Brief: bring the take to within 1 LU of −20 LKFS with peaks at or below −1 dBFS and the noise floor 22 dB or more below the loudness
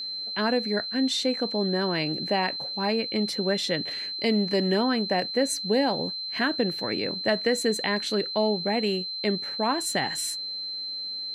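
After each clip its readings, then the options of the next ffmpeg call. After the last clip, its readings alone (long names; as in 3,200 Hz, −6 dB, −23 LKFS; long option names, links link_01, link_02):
interfering tone 4,100 Hz; level of the tone −31 dBFS; integrated loudness −26.0 LKFS; sample peak −10.0 dBFS; target loudness −20.0 LKFS
→ -af "bandreject=frequency=4100:width=30"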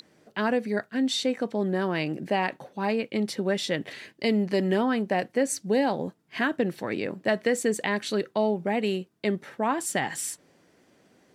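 interfering tone none found; integrated loudness −27.5 LKFS; sample peak −11.0 dBFS; target loudness −20.0 LKFS
→ -af "volume=7.5dB"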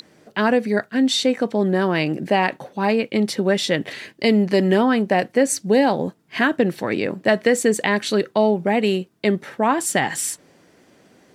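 integrated loudness −20.0 LKFS; sample peak −3.5 dBFS; background noise floor −56 dBFS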